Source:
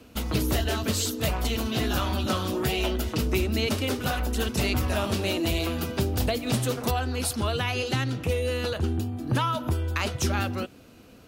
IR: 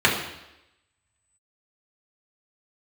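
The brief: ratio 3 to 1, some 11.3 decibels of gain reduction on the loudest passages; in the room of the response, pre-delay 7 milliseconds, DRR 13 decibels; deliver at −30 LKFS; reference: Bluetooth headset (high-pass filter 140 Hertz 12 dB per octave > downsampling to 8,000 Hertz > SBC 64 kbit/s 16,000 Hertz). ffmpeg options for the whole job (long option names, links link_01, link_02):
-filter_complex "[0:a]acompressor=threshold=-37dB:ratio=3,asplit=2[link_01][link_02];[1:a]atrim=start_sample=2205,adelay=7[link_03];[link_02][link_03]afir=irnorm=-1:irlink=0,volume=-33dB[link_04];[link_01][link_04]amix=inputs=2:normalize=0,highpass=140,aresample=8000,aresample=44100,volume=9dB" -ar 16000 -c:a sbc -b:a 64k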